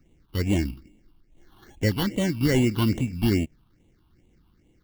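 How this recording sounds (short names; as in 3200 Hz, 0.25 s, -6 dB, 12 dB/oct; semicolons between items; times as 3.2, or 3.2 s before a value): aliases and images of a low sample rate 2500 Hz, jitter 0%; phasing stages 6, 2.4 Hz, lowest notch 510–1400 Hz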